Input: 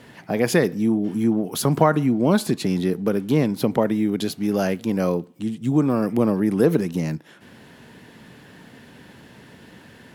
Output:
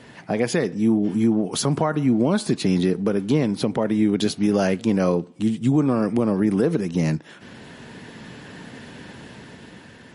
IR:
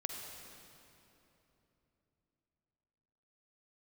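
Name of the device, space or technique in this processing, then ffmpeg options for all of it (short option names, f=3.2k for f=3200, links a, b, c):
low-bitrate web radio: -af "dynaudnorm=f=210:g=9:m=5dB,alimiter=limit=-11dB:level=0:latency=1:release=309,volume=1.5dB" -ar 32000 -c:a libmp3lame -b:a 40k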